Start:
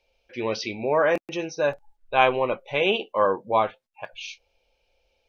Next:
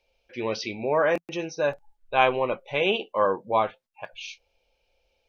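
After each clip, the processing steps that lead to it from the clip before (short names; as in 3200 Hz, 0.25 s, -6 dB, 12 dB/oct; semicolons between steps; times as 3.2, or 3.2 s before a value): bell 170 Hz +2.5 dB 0.27 oct; gain -1.5 dB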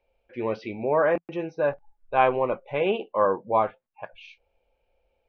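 LPF 1700 Hz 12 dB/oct; gain +1 dB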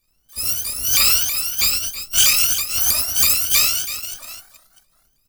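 FFT order left unsorted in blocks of 256 samples; reverse bouncing-ball echo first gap 90 ms, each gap 1.25×, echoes 5; shaped vibrato saw up 3.1 Hz, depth 250 cents; gain +5 dB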